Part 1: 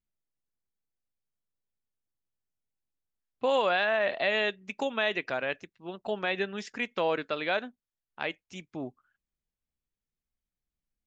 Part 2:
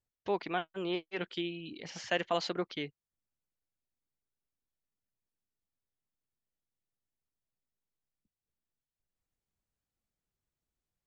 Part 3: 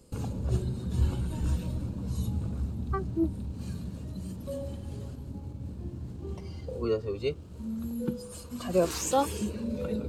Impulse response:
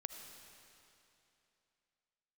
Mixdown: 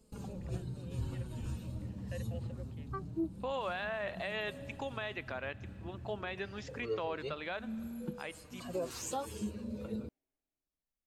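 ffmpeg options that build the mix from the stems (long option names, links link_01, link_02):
-filter_complex "[0:a]equalizer=frequency=1100:width=1.5:gain=4,volume=-9.5dB,asplit=2[link_01][link_02];[link_02]volume=-11dB[link_03];[1:a]asplit=3[link_04][link_05][link_06];[link_04]bandpass=frequency=530:width_type=q:width=8,volume=0dB[link_07];[link_05]bandpass=frequency=1840:width_type=q:width=8,volume=-6dB[link_08];[link_06]bandpass=frequency=2480:width_type=q:width=8,volume=-9dB[link_09];[link_07][link_08][link_09]amix=inputs=3:normalize=0,volume=-9.5dB[link_10];[2:a]flanger=delay=4.5:depth=5.4:regen=20:speed=0.26:shape=triangular,volume=-5dB[link_11];[3:a]atrim=start_sample=2205[link_12];[link_03][link_12]afir=irnorm=-1:irlink=0[link_13];[link_01][link_10][link_11][link_13]amix=inputs=4:normalize=0,alimiter=level_in=3dB:limit=-24dB:level=0:latency=1:release=182,volume=-3dB"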